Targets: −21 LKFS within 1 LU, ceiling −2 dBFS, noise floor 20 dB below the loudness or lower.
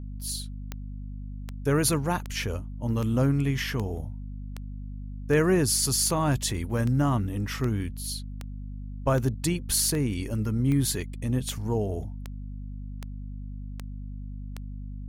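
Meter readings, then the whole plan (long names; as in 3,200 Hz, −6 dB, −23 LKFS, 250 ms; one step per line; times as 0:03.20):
number of clicks 19; mains hum 50 Hz; hum harmonics up to 250 Hz; level of the hum −34 dBFS; integrated loudness −26.5 LKFS; sample peak −10.0 dBFS; target loudness −21.0 LKFS
→ click removal
mains-hum notches 50/100/150/200/250 Hz
level +5.5 dB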